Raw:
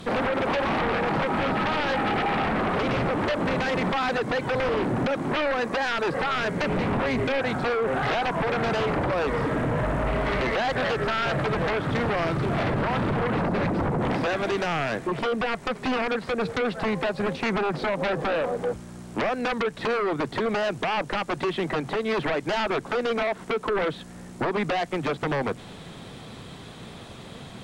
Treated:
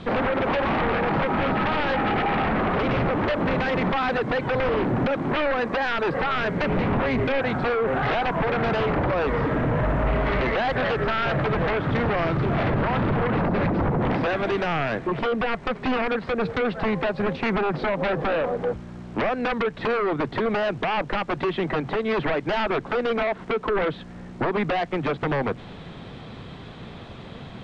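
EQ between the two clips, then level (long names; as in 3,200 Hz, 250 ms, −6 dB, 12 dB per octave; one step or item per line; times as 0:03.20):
low-pass filter 3,500 Hz 12 dB per octave
low-shelf EQ 90 Hz +5 dB
+1.5 dB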